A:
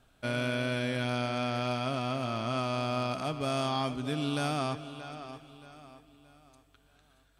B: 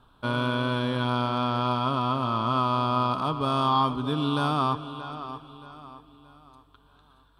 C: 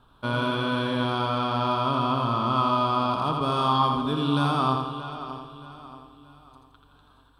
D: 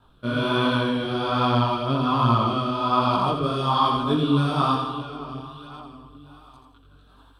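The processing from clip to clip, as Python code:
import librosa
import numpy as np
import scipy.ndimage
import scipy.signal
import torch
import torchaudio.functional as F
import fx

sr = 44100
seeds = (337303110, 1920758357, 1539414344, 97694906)

y1 = fx.curve_eq(x, sr, hz=(450.0, 690.0, 1000.0, 2100.0, 3500.0, 6600.0, 9800.0), db=(0, -6, 12, -13, 1, -17, -9))
y1 = F.gain(torch.from_numpy(y1), 5.5).numpy()
y2 = fx.echo_feedback(y1, sr, ms=84, feedback_pct=46, wet_db=-4.5)
y3 = fx.rotary(y2, sr, hz=1.2)
y3 = fx.chorus_voices(y3, sr, voices=2, hz=1.3, base_ms=19, depth_ms=3.0, mix_pct=55)
y3 = F.gain(torch.from_numpy(y3), 8.0).numpy()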